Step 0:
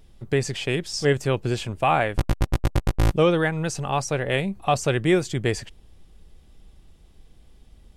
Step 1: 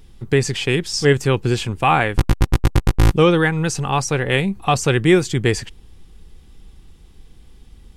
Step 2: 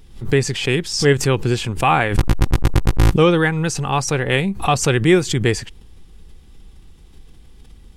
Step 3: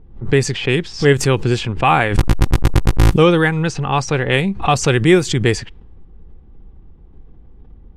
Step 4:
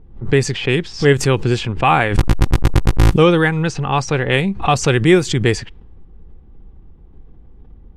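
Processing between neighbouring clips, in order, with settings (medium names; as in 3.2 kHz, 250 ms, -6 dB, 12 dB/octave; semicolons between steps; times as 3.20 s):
peaking EQ 620 Hz -12.5 dB 0.28 oct; trim +6.5 dB
swell ahead of each attack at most 130 dB/s
level-controlled noise filter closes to 800 Hz, open at -11.5 dBFS; trim +2 dB
treble shelf 9.2 kHz -3.5 dB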